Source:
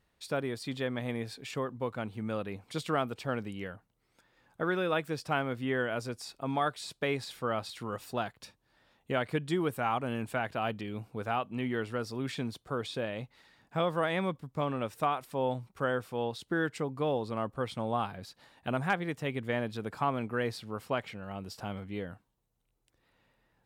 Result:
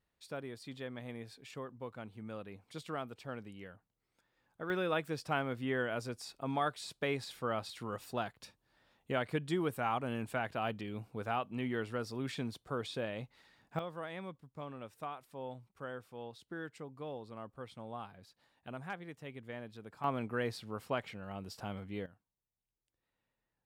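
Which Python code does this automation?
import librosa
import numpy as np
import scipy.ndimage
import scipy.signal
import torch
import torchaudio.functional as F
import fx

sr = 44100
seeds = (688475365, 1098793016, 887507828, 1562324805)

y = fx.gain(x, sr, db=fx.steps((0.0, -10.0), (4.7, -3.5), (13.79, -13.0), (20.04, -3.5), (22.06, -16.0)))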